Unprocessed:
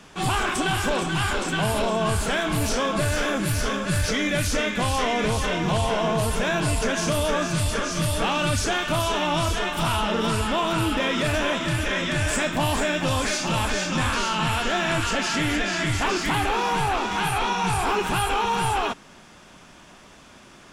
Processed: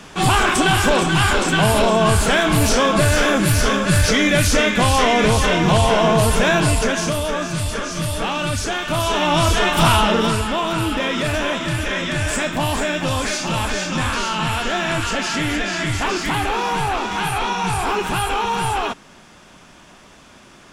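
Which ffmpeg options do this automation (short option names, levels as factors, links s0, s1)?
-af "volume=7.08,afade=t=out:st=6.5:d=0.71:silence=0.446684,afade=t=in:st=8.81:d=1.05:silence=0.354813,afade=t=out:st=9.86:d=0.59:silence=0.421697"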